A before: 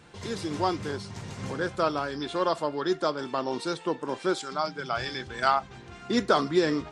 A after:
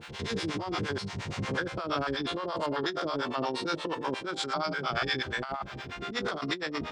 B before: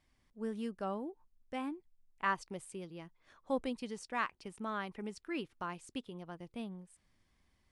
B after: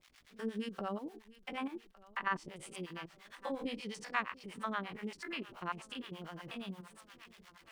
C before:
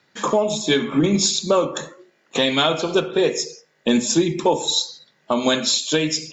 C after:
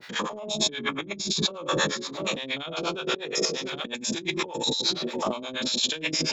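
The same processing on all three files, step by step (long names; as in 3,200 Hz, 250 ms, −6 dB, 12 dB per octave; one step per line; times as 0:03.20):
spectrum averaged block by block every 100 ms
bit-depth reduction 12 bits, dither none
feedback echo with a long and a short gap by turns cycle 1,160 ms, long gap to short 1.5 to 1, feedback 53%, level −22.5 dB
two-band tremolo in antiphase 8.5 Hz, depth 100%, crossover 540 Hz
high-shelf EQ 3,900 Hz −7 dB
compressor whose output falls as the input rises −38 dBFS, ratio −1
parametric band 3,000 Hz +7.5 dB 2.3 octaves
one half of a high-frequency compander encoder only
level +4.5 dB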